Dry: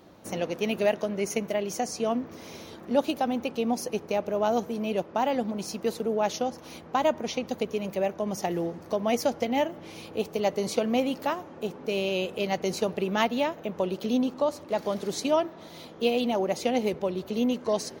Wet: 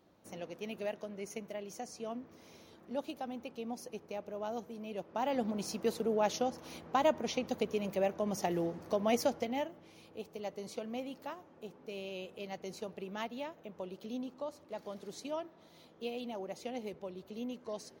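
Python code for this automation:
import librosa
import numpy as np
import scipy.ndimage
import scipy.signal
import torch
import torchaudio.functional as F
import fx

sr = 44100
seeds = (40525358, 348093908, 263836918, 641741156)

y = fx.gain(x, sr, db=fx.line((4.9, -14.0), (5.45, -4.5), (9.21, -4.5), (9.89, -15.0)))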